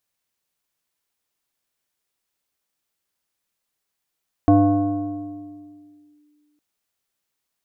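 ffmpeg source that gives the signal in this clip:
-f lavfi -i "aevalsrc='0.355*pow(10,-3*t/2.27)*sin(2*PI*297*t+0.97*clip(1-t/1.76,0,1)*sin(2*PI*1.34*297*t))':d=2.11:s=44100"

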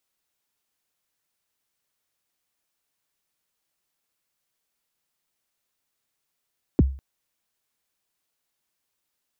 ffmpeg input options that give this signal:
-f lavfi -i "aevalsrc='0.316*pow(10,-3*t/0.39)*sin(2*PI*(400*0.028/log(67/400)*(exp(log(67/400)*min(t,0.028)/0.028)-1)+67*max(t-0.028,0)))':d=0.2:s=44100"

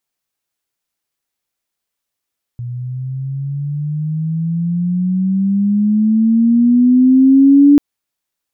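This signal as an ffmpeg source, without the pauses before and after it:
-f lavfi -i "aevalsrc='pow(10,(-21.5+18*t/5.19)/20)*sin(2*PI*120*5.19/log(290/120)*(exp(log(290/120)*t/5.19)-1))':d=5.19:s=44100"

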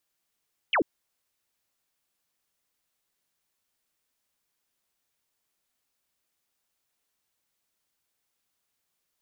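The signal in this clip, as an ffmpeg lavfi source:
-f lavfi -i "aevalsrc='0.1*clip(t/0.002,0,1)*clip((0.09-t)/0.002,0,1)*sin(2*PI*3300*0.09/log(250/3300)*(exp(log(250/3300)*t/0.09)-1))':d=0.09:s=44100"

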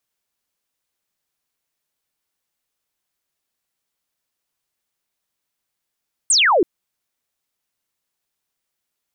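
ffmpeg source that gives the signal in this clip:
-f lavfi -i "aevalsrc='0.266*clip(t/0.002,0,1)*clip((0.33-t)/0.002,0,1)*sin(2*PI*9000*0.33/log(310/9000)*(exp(log(310/9000)*t/0.33)-1))':d=0.33:s=44100"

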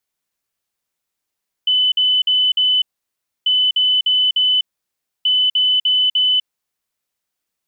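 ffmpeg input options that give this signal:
-f lavfi -i "aevalsrc='0.251*sin(2*PI*3010*t)*clip(min(mod(mod(t,1.79),0.3),0.25-mod(mod(t,1.79),0.3))/0.005,0,1)*lt(mod(t,1.79),1.2)':d=5.37:s=44100"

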